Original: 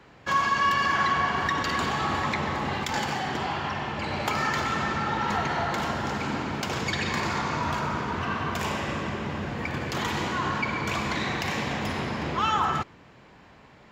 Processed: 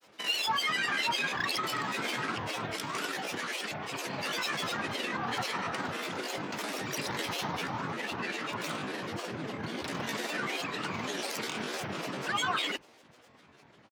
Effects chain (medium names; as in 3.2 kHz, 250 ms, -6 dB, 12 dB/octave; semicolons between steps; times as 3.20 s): pitch shift +7.5 st; frequency shift +60 Hz; granulator, pitch spread up and down by 12 st; trim -5 dB